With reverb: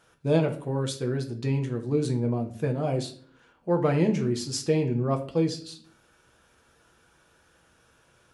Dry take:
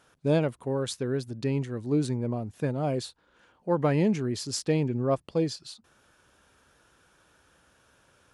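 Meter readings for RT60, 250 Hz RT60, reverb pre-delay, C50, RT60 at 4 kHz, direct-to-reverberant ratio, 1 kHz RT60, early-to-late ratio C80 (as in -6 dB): 0.50 s, 0.65 s, 6 ms, 11.5 dB, 0.35 s, 2.5 dB, 0.45 s, 16.0 dB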